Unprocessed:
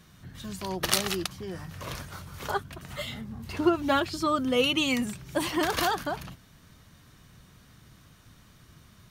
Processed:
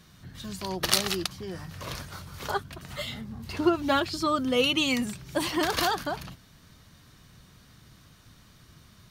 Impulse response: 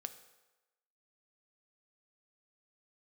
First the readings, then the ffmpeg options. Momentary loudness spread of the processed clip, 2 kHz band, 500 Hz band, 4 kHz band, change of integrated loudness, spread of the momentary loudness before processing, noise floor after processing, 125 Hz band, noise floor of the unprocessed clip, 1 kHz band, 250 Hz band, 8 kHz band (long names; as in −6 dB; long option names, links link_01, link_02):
15 LU, +0.5 dB, 0.0 dB, +2.0 dB, +0.5 dB, 15 LU, −57 dBFS, 0.0 dB, −57 dBFS, 0.0 dB, 0.0 dB, +1.0 dB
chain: -af "equalizer=frequency=4500:width_type=o:width=0.67:gain=4"